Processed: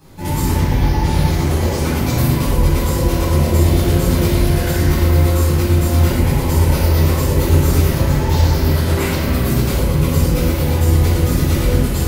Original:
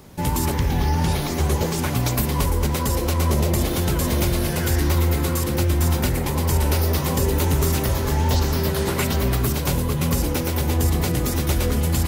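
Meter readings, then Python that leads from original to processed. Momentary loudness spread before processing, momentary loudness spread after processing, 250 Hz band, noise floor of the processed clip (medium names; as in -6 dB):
2 LU, 3 LU, +6.0 dB, -19 dBFS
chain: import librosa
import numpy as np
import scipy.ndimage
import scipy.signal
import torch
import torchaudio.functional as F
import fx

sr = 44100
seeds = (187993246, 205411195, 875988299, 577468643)

y = fx.room_shoebox(x, sr, seeds[0], volume_m3=950.0, walls='mixed', distance_m=8.7)
y = y * 10.0 ** (-10.5 / 20.0)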